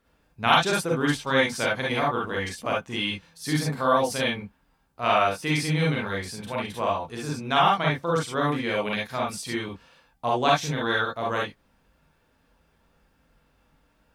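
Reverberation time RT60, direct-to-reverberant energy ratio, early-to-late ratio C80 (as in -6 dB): not exponential, -4.0 dB, 40.5 dB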